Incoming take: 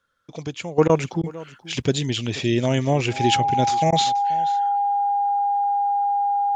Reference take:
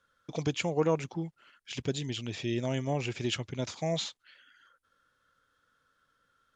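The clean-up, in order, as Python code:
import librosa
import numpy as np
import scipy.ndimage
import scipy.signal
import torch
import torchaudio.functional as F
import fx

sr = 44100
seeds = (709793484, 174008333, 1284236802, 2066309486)

y = fx.notch(x, sr, hz=810.0, q=30.0)
y = fx.fix_interpolate(y, sr, at_s=(0.88, 1.22, 3.91), length_ms=13.0)
y = fx.fix_echo_inverse(y, sr, delay_ms=481, level_db=-19.0)
y = fx.gain(y, sr, db=fx.steps((0.0, 0.0), (0.78, -11.0)))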